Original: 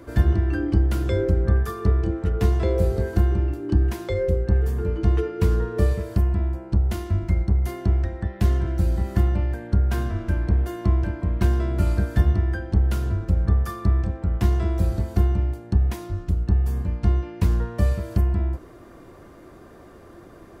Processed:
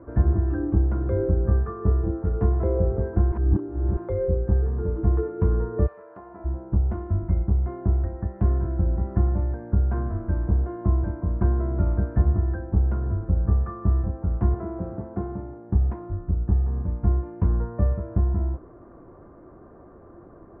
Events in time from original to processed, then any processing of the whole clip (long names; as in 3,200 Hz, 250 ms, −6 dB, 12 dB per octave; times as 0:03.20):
0:03.32–0:03.97: reverse
0:05.86–0:06.44: high-pass filter 1,100 Hz → 460 Hz
0:14.54–0:15.70: band-pass filter 160–3,100 Hz
whole clip: low-pass filter 1,300 Hz 24 dB per octave; level −1.5 dB